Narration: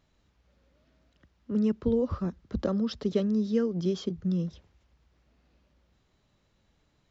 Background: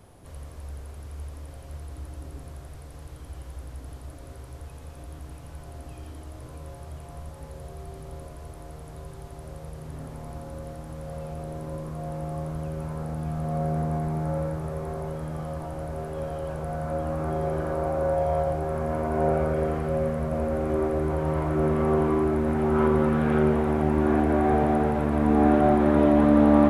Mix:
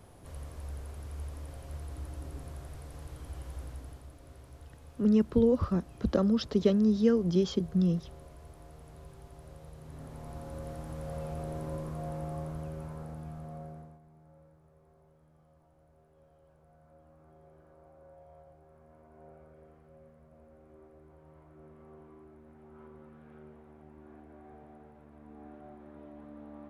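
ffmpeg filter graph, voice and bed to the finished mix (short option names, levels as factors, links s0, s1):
-filter_complex "[0:a]adelay=3500,volume=1.26[s0];[1:a]volume=1.78,afade=t=out:st=3.63:d=0.47:silence=0.421697,afade=t=in:st=9.79:d=1.01:silence=0.421697,afade=t=out:st=11.62:d=2.37:silence=0.0375837[s1];[s0][s1]amix=inputs=2:normalize=0"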